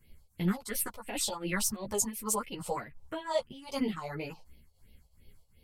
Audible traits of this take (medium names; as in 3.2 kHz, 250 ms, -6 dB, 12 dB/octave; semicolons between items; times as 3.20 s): phasing stages 4, 2.9 Hz, lowest notch 270–1300 Hz; tremolo triangle 2.7 Hz, depth 85%; a shimmering, thickened sound